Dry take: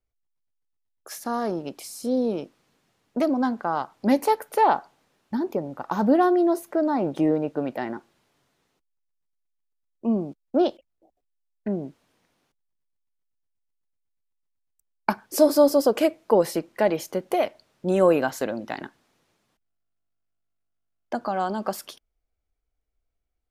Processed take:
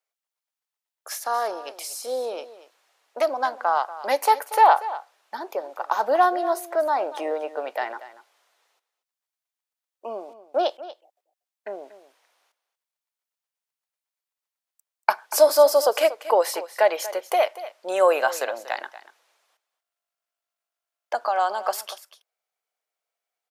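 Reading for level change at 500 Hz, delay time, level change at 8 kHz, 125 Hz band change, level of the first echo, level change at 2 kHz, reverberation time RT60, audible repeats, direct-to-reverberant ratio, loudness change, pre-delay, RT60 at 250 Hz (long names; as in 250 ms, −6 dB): +1.0 dB, 237 ms, +5.0 dB, below −30 dB, −15.5 dB, +5.0 dB, no reverb audible, 1, no reverb audible, +1.0 dB, no reverb audible, no reverb audible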